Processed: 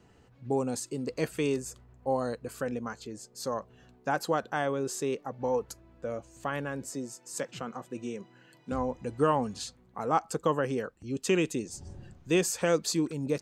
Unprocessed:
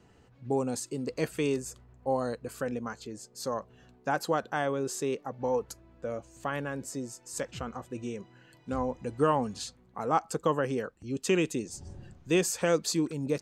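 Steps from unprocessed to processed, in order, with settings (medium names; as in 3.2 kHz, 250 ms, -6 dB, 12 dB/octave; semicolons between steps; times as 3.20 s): 6.90–8.72 s: high-pass 130 Hz 24 dB/octave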